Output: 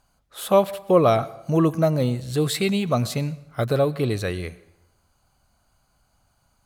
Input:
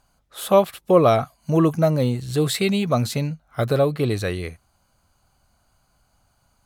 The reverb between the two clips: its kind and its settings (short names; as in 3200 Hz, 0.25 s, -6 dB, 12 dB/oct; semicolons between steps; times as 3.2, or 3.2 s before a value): plate-style reverb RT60 0.9 s, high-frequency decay 0.75×, pre-delay 85 ms, DRR 19 dB; gain -1.5 dB